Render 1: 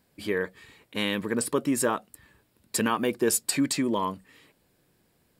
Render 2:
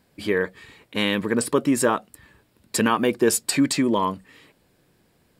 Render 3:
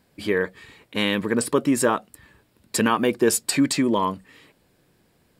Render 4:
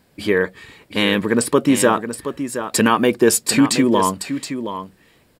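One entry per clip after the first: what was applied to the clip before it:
high shelf 8500 Hz -6.5 dB; gain +5.5 dB
nothing audible
echo 0.722 s -10 dB; gain +5 dB

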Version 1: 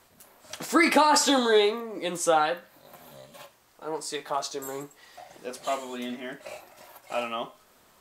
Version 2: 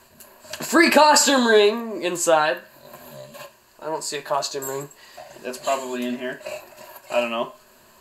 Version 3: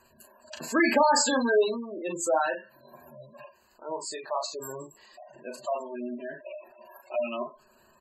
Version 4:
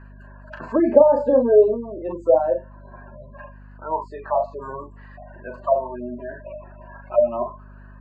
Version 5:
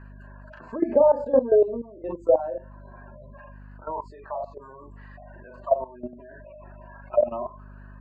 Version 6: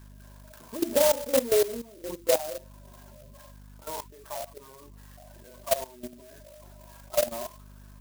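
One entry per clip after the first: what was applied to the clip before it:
ripple EQ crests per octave 1.4, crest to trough 9 dB; gain +5.5 dB
doubler 38 ms -5.5 dB; spectral gate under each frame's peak -15 dB strong; gain -8 dB
hum 50 Hz, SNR 16 dB; envelope low-pass 550–1800 Hz down, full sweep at -24 dBFS; gain +2.5 dB
level quantiser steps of 15 dB
clock jitter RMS 0.12 ms; gain -4.5 dB

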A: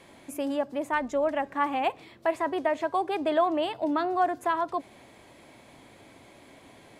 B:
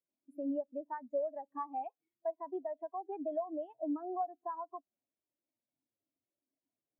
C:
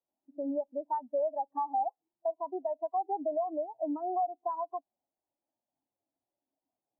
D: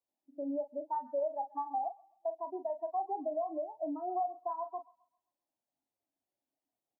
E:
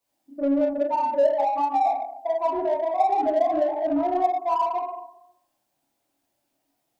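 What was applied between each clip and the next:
compressor 10:1, threshold -30 dBFS, peak gain reduction 12 dB; spectral expander 2.5:1; gain -6.5 dB
synth low-pass 820 Hz, resonance Q 5.1; limiter -24 dBFS, peak gain reduction 8.5 dB
doubler 39 ms -9 dB; thin delay 0.132 s, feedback 34%, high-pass 1400 Hz, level -13 dB; gain -3.5 dB
plate-style reverb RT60 0.78 s, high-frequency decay 0.95×, DRR -7 dB; in parallel at -4.5 dB: soft clip -36.5 dBFS, distortion -6 dB; on the sum: gain +5 dB

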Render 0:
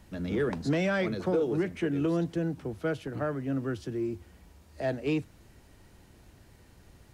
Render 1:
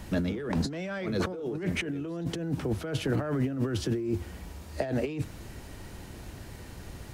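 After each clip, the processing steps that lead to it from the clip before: negative-ratio compressor -37 dBFS, ratio -1; gain +6 dB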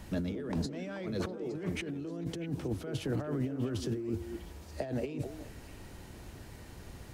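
dynamic EQ 1600 Hz, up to -4 dB, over -48 dBFS, Q 0.73; delay with a stepping band-pass 0.216 s, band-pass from 340 Hz, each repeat 1.4 oct, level -5.5 dB; gain -5 dB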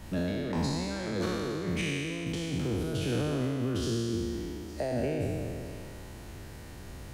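spectral trails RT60 2.59 s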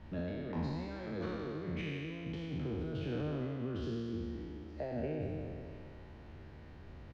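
air absorption 270 m; doubler 13 ms -11 dB; gain -7 dB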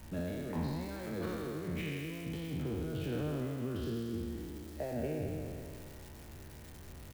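switching spikes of -43 dBFS; gain +1 dB

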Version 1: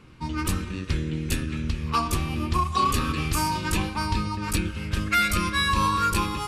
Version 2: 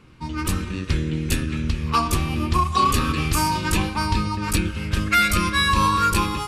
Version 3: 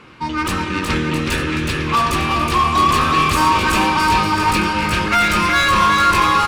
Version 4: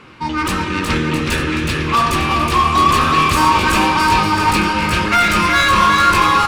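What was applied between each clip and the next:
AGC gain up to 4 dB
overdrive pedal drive 21 dB, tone 2400 Hz, clips at -8.5 dBFS; bouncing-ball echo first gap 0.37 s, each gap 0.8×, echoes 5
flange 0.96 Hz, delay 6.9 ms, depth 9.8 ms, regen -74%; gain +6 dB

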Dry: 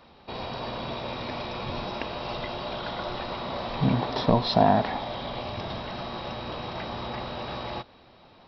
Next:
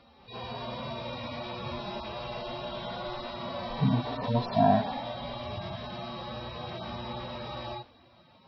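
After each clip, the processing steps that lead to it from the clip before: median-filter separation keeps harmonic; gain -1 dB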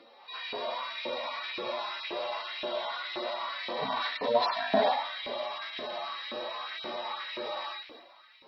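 thirty-one-band EQ 100 Hz -6 dB, 315 Hz +4 dB, 800 Hz -4 dB, 2000 Hz +6 dB, 4000 Hz +4 dB; transient shaper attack +2 dB, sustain +7 dB; LFO high-pass saw up 1.9 Hz 340–2500 Hz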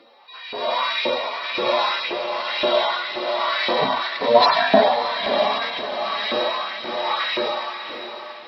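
AGC gain up to 11 dB; tremolo 1.1 Hz, depth 60%; diffused feedback echo 0.631 s, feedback 41%, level -10 dB; gain +4 dB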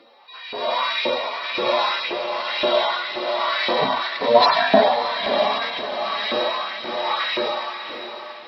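nothing audible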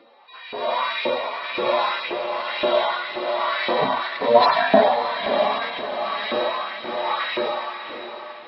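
Gaussian blur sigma 2 samples

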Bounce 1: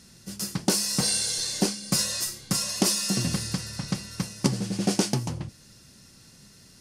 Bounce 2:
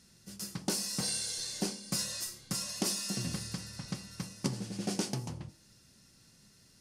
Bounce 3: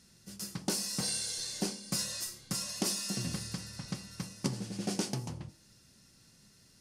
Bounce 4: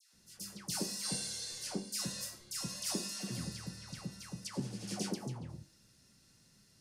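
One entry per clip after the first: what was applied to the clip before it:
de-hum 47.69 Hz, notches 27; gain -9 dB
nothing audible
dispersion lows, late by 0.138 s, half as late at 1200 Hz; gain -4 dB

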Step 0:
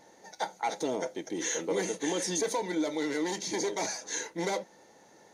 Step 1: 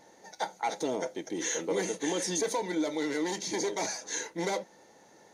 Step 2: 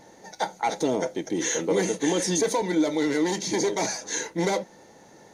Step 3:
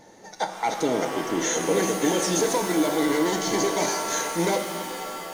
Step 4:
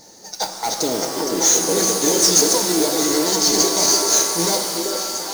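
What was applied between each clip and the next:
nothing audible
low shelf 200 Hz +9.5 dB; gain +5 dB
shimmer reverb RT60 2.7 s, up +7 st, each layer -2 dB, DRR 6 dB
resonant high shelf 3600 Hz +9 dB, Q 3; modulation noise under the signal 12 dB; delay with a stepping band-pass 0.388 s, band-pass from 420 Hz, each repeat 1.4 oct, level -1 dB; gain +1 dB

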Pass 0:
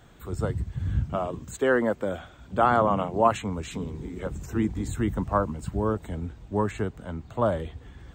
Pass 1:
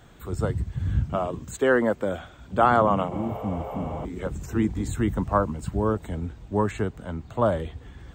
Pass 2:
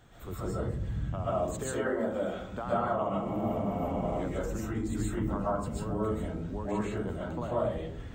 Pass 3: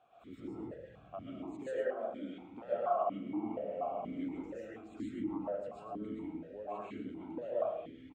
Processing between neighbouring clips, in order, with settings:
spectral repair 3.14–4.02, 380–12000 Hz before; gain +2 dB
compressor 10:1, threshold -28 dBFS, peak gain reduction 14.5 dB; digital reverb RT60 0.61 s, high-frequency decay 0.3×, pre-delay 95 ms, DRR -7.5 dB; gain -7 dB
echo 0.108 s -9.5 dB; vowel sequencer 4.2 Hz; gain +3 dB

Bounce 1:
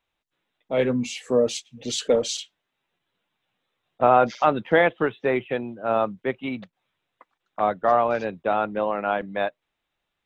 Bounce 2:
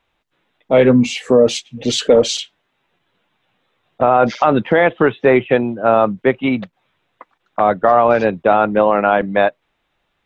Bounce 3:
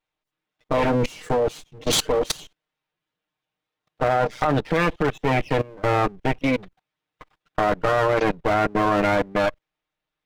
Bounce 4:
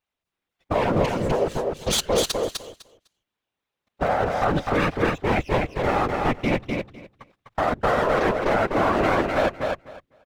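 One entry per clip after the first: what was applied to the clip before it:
high shelf 5000 Hz -11 dB; maximiser +14 dB; gain -1 dB
minimum comb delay 6.5 ms; level quantiser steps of 22 dB; gain +2.5 dB
whisperiser; on a send: feedback echo 0.252 s, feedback 16%, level -3.5 dB; on the sum: gain -2 dB

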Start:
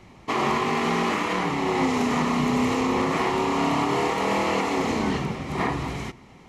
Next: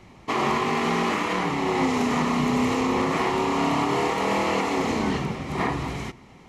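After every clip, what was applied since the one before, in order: nothing audible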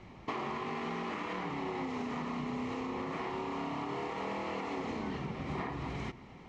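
compressor 12:1, threshold -31 dBFS, peak gain reduction 13 dB; air absorption 110 m; gain -2.5 dB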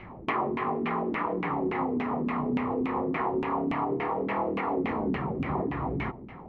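LFO low-pass saw down 3.5 Hz 250–2600 Hz; gain +6 dB

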